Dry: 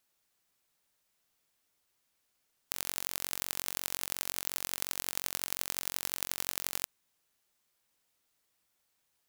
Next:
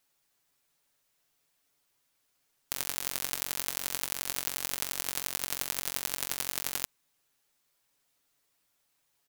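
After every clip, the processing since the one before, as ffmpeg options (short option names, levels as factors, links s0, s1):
-af "aecho=1:1:7.1:0.51,volume=1.19"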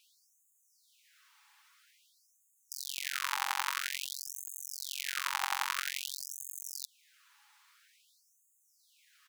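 -filter_complex "[0:a]asplit=2[s0][s1];[s1]highpass=f=720:p=1,volume=14.1,asoftclip=type=tanh:threshold=0.794[s2];[s0][s2]amix=inputs=2:normalize=0,lowpass=f=1100:p=1,volume=0.501,afftfilt=real='re*gte(b*sr/1024,740*pow(6500/740,0.5+0.5*sin(2*PI*0.5*pts/sr)))':imag='im*gte(b*sr/1024,740*pow(6500/740,0.5+0.5*sin(2*PI*0.5*pts/sr)))':win_size=1024:overlap=0.75,volume=2.11"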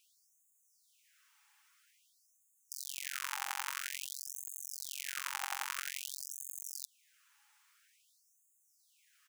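-af "equalizer=f=1000:t=o:w=1:g=-10,equalizer=f=2000:t=o:w=1:g=-4,equalizer=f=4000:t=o:w=1:g=-9,equalizer=f=16000:t=o:w=1:g=-5,volume=1.33"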